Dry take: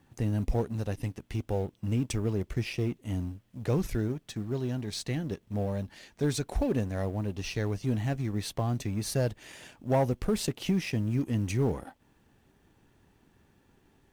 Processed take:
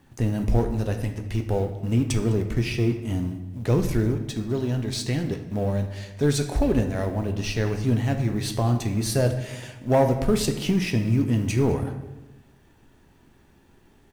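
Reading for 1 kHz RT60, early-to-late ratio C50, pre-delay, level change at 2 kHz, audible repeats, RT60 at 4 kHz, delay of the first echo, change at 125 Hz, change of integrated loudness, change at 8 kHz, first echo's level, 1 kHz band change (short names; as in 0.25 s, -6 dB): 1.0 s, 9.0 dB, 3 ms, +6.5 dB, 1, 0.80 s, 0.205 s, +7.0 dB, +6.5 dB, +6.5 dB, -21.0 dB, +6.5 dB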